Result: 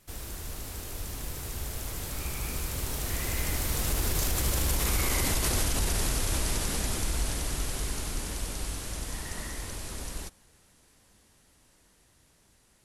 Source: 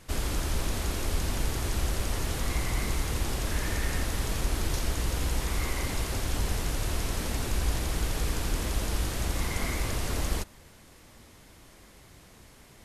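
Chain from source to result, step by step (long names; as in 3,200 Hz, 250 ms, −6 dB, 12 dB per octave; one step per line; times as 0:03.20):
source passing by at 0:05.20, 41 m/s, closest 26 metres
brickwall limiter −27.5 dBFS, peak gain reduction 9.5 dB
high-shelf EQ 6,400 Hz +10 dB
level +8 dB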